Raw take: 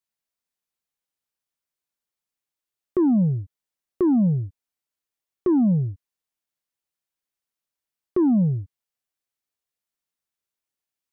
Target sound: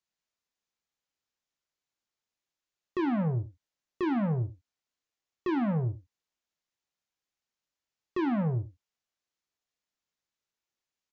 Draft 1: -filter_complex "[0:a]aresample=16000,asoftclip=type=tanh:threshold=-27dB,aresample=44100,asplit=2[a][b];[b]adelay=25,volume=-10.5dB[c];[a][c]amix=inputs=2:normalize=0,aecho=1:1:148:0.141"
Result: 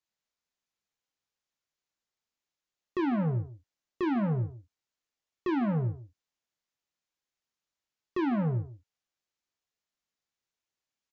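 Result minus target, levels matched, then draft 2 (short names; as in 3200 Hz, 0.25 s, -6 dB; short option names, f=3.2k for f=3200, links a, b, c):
echo 63 ms late
-filter_complex "[0:a]aresample=16000,asoftclip=type=tanh:threshold=-27dB,aresample=44100,asplit=2[a][b];[b]adelay=25,volume=-10.5dB[c];[a][c]amix=inputs=2:normalize=0,aecho=1:1:85:0.141"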